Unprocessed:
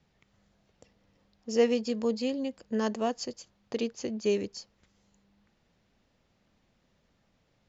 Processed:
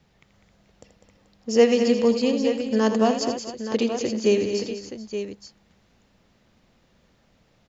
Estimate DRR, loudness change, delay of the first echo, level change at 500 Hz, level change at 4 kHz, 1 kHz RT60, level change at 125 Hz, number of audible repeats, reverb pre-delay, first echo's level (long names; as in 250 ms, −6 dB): no reverb audible, +8.0 dB, 82 ms, +9.0 dB, +9.0 dB, no reverb audible, +9.0 dB, 5, no reverb audible, −10.5 dB